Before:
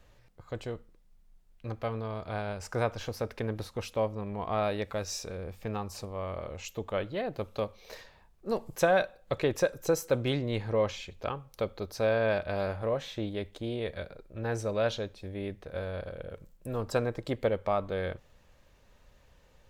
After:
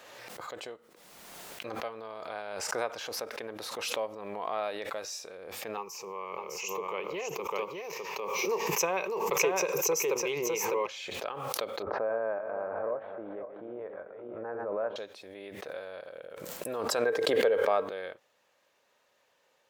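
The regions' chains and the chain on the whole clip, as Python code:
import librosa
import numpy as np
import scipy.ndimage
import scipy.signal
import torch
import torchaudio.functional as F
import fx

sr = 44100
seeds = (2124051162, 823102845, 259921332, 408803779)

y = fx.chain(x, sr, fx.ripple_eq(per_octave=0.77, db=16),
    fx.echo_single(ms=604, db=-4.0), at=(5.77, 10.87))
y = fx.chain(y, sr, fx.reverse_delay_fb(ms=273, feedback_pct=49, wet_db=-9),
    fx.lowpass(hz=1400.0, slope=24), at=(11.82, 14.96))
y = fx.chain(y, sr, fx.notch(hz=7600.0, q=16.0),
    fx.small_body(hz=(450.0, 1600.0), ring_ms=65, db=13),
    fx.env_flatten(amount_pct=50), at=(17.05, 17.89))
y = scipy.signal.sosfilt(scipy.signal.butter(2, 460.0, 'highpass', fs=sr, output='sos'), y)
y = fx.pre_swell(y, sr, db_per_s=27.0)
y = F.gain(torch.from_numpy(y), -3.0).numpy()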